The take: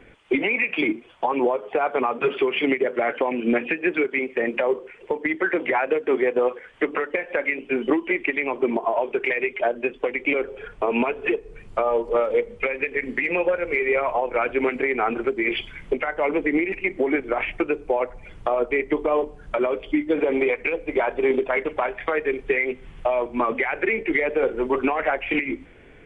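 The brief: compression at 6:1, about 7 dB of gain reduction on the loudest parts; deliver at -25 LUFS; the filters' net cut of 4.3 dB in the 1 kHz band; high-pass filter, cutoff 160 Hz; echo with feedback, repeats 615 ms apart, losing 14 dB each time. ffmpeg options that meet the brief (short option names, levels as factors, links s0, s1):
-af "highpass=160,equalizer=f=1000:t=o:g=-6,acompressor=threshold=0.0562:ratio=6,aecho=1:1:615|1230:0.2|0.0399,volume=1.78"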